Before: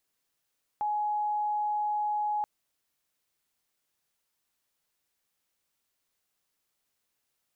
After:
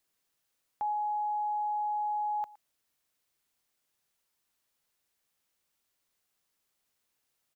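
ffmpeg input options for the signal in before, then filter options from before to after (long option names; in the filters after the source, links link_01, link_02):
-f lavfi -i "aevalsrc='0.0473*sin(2*PI*839*t)':duration=1.63:sample_rate=44100"
-filter_complex "[0:a]acrossover=split=600[link_01][link_02];[link_01]acompressor=threshold=-54dB:ratio=6[link_03];[link_02]aecho=1:1:115:0.0891[link_04];[link_03][link_04]amix=inputs=2:normalize=0"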